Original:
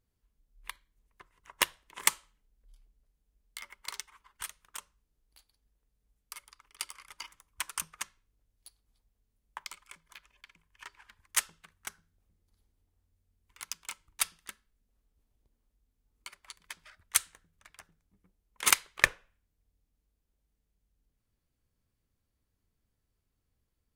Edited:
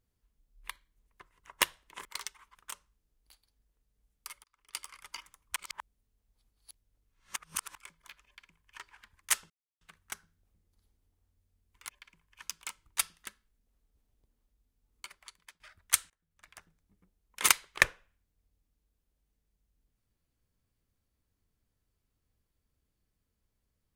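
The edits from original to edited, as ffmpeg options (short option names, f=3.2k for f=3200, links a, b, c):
-filter_complex "[0:a]asplit=11[a][b][c][d][e][f][g][h][i][j][k];[a]atrim=end=2.052[l];[b]atrim=start=3.778:end=4.282[m];[c]atrim=start=4.608:end=6.5,asetpts=PTS-STARTPTS,afade=t=out:st=1.888:d=0.004:c=hsin[n];[d]atrim=start=6.5:end=7.622,asetpts=PTS-STARTPTS,afade=t=in:d=0.4[o];[e]atrim=start=7.618:end=9.812,asetpts=PTS-STARTPTS,areverse[p];[f]atrim=start=9.808:end=11.56,asetpts=PTS-STARTPTS,afade=t=out:st=1.748:d=0.004:c=hsin,apad=pad_dur=0.31[q];[g]atrim=start=11.56:end=13.642,asetpts=PTS-STARTPTS,afade=t=in:d=0.004:c=hsin[r];[h]atrim=start=10.308:end=10.842[s];[i]atrim=start=13.638:end=16.82,asetpts=PTS-STARTPTS,afade=t=out:st=2.722:d=0.46:silence=0.105925[t];[j]atrim=start=16.82:end=17.32,asetpts=PTS-STARTPTS,afade=t=in:d=0.004:c=hsin:silence=0.105925,afade=t=out:st=0.496:d=0.004:c=hsin:silence=0.0668344[u];[k]atrim=start=17.32,asetpts=PTS-STARTPTS,afade=t=in:d=0.38:c=qua:silence=0.0668344[v];[l][m]acrossfade=d=0.004:c1=hsin:c2=hsin[w];[n][o]concat=n=2:v=0:a=1[x];[w][x]acrossfade=d=0.004:c1=hsin:c2=hsin[y];[y][p]acrossfade=d=0.004:c1=hsin:c2=hsin[z];[q][r]concat=n=2:v=0:a=1[aa];[z][aa]acrossfade=d=0.004:c1=hsin:c2=hsin[ab];[ab][s]acrossfade=d=0.004:c1=hsin:c2=hsin[ac];[t][u][v]concat=n=3:v=0:a=1[ad];[ac][ad]acrossfade=d=0.004:c1=hsin:c2=hsin"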